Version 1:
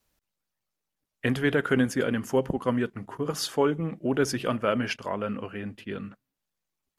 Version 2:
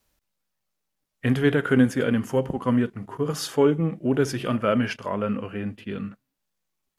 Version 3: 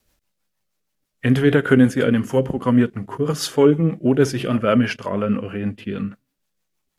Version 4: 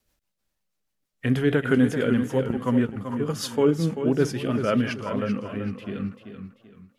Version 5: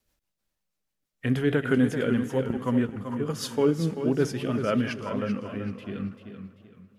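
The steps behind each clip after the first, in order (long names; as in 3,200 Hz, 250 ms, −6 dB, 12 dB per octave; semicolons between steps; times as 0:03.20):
harmonic and percussive parts rebalanced percussive −9 dB; level +6.5 dB
rotating-speaker cabinet horn 6.3 Hz; level +7 dB
feedback echo with a swinging delay time 387 ms, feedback 33%, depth 81 cents, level −9 dB; level −6 dB
convolution reverb RT60 3.4 s, pre-delay 57 ms, DRR 19.5 dB; level −2.5 dB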